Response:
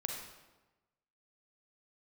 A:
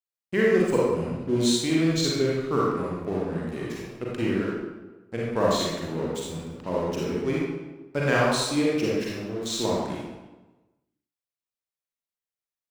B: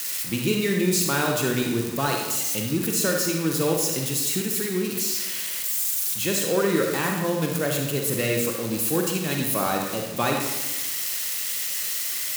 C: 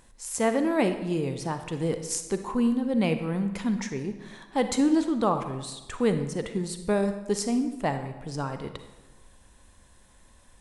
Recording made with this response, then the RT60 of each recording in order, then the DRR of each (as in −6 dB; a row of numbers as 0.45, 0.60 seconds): B; 1.1, 1.1, 1.1 seconds; −5.5, 1.0, 8.0 decibels